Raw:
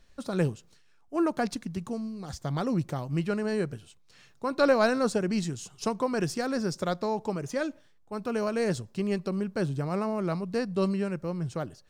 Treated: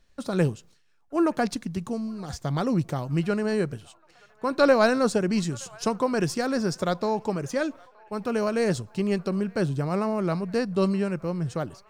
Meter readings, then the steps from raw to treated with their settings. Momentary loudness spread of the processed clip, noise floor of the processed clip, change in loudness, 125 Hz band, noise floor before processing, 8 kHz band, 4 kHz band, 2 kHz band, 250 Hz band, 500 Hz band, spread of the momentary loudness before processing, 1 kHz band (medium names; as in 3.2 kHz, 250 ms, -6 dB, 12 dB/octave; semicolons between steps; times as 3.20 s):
9 LU, -60 dBFS, +3.5 dB, +3.5 dB, -60 dBFS, +3.5 dB, +3.5 dB, +3.5 dB, +3.5 dB, +3.5 dB, 9 LU, +3.5 dB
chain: gate -52 dBFS, range -7 dB; feedback echo behind a band-pass 921 ms, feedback 63%, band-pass 1.4 kHz, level -23.5 dB; trim +3.5 dB